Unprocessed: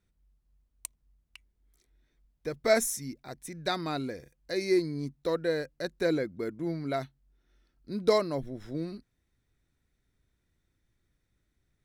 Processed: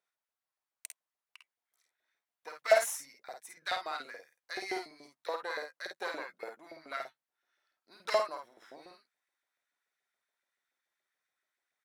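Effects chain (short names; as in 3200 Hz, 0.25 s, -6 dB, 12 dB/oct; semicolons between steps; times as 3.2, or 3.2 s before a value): added harmonics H 4 -17 dB, 6 -16 dB, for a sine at -11.5 dBFS; LFO high-pass saw up 7 Hz 580–2000 Hz; early reflections 51 ms -5 dB, 64 ms -14.5 dB; gain -6.5 dB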